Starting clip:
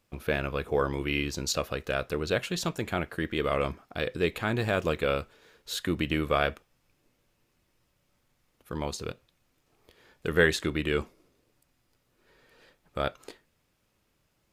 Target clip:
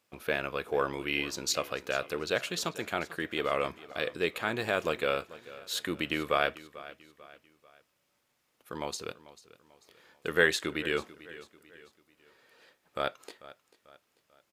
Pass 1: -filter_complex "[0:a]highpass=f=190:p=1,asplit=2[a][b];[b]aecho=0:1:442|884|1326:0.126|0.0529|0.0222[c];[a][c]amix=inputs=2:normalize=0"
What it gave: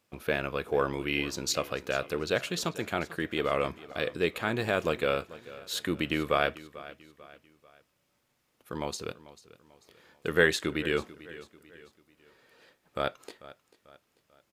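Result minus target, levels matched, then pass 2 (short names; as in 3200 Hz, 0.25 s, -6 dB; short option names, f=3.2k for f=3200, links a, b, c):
250 Hz band +2.5 dB
-filter_complex "[0:a]highpass=f=450:p=1,asplit=2[a][b];[b]aecho=0:1:442|884|1326:0.126|0.0529|0.0222[c];[a][c]amix=inputs=2:normalize=0"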